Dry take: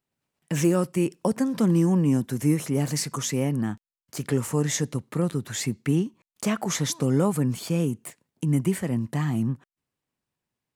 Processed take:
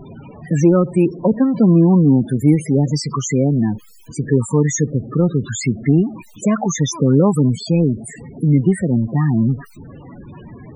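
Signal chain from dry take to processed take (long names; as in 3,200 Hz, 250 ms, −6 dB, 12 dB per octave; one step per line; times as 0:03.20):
converter with a step at zero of −33.5 dBFS
spectral peaks only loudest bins 16
level +8.5 dB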